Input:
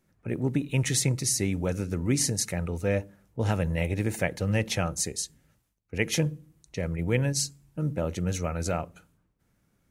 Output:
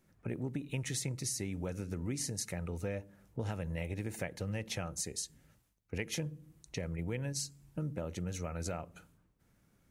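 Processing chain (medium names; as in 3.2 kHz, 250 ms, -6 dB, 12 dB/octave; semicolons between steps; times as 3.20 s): compression 4:1, threshold -36 dBFS, peak gain reduction 14 dB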